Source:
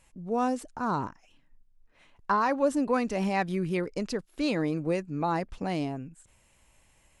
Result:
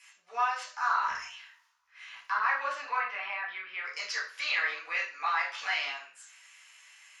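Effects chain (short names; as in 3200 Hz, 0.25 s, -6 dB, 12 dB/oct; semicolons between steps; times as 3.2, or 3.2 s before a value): 5.26–5.91 G.711 law mismatch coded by mu; treble ducked by the level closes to 2400 Hz, closed at -21.5 dBFS; HPF 1300 Hz 24 dB/oct; high shelf 4500 Hz +6 dB; 1.06–2.43 transient shaper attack 0 dB, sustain +12 dB; limiter -31.5 dBFS, peak gain reduction 12.5 dB; 2.96–3.84 air absorption 470 m; reverb RT60 0.45 s, pre-delay 3 ms, DRR -6.5 dB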